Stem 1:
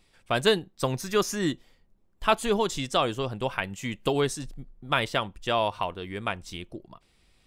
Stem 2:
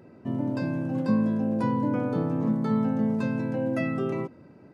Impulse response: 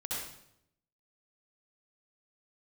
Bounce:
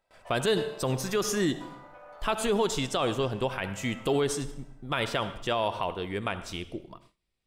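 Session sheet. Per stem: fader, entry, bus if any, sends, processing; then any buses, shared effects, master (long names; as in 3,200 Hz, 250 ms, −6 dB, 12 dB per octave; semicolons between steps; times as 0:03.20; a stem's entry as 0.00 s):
+0.5 dB, 0.00 s, send −16 dB, parametric band 420 Hz +2.5 dB
+3.0 dB, 0.00 s, send −11.5 dB, one-sided soft clipper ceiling −26.5 dBFS; downward compressor, threshold −33 dBFS, peak gain reduction 11.5 dB; Butterworth high-pass 600 Hz 36 dB per octave; automatic ducking −12 dB, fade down 1.95 s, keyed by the first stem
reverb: on, RT60 0.75 s, pre-delay 59 ms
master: noise gate with hold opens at −46 dBFS; brickwall limiter −16.5 dBFS, peak gain reduction 10 dB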